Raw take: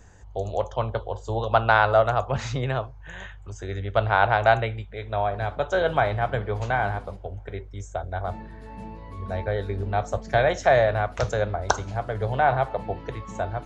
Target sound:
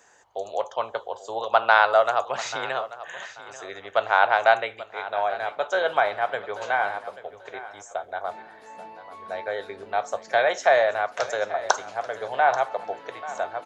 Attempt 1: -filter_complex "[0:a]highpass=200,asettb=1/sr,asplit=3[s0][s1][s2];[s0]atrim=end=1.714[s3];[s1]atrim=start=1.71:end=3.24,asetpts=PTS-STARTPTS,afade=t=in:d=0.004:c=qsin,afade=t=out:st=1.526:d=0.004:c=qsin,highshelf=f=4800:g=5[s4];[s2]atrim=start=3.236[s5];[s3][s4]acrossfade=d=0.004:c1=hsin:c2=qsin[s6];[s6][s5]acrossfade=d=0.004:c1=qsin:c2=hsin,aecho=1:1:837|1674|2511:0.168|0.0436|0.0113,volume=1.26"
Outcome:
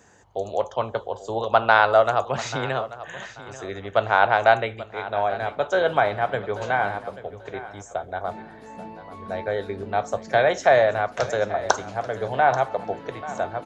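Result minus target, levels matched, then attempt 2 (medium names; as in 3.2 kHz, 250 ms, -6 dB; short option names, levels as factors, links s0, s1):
250 Hz band +9.5 dB
-filter_complex "[0:a]highpass=570,asettb=1/sr,asplit=3[s0][s1][s2];[s0]atrim=end=1.714[s3];[s1]atrim=start=1.71:end=3.24,asetpts=PTS-STARTPTS,afade=t=in:d=0.004:c=qsin,afade=t=out:st=1.526:d=0.004:c=qsin,highshelf=f=4800:g=5[s4];[s2]atrim=start=3.236[s5];[s3][s4]acrossfade=d=0.004:c1=hsin:c2=qsin[s6];[s6][s5]acrossfade=d=0.004:c1=qsin:c2=hsin,aecho=1:1:837|1674|2511:0.168|0.0436|0.0113,volume=1.26"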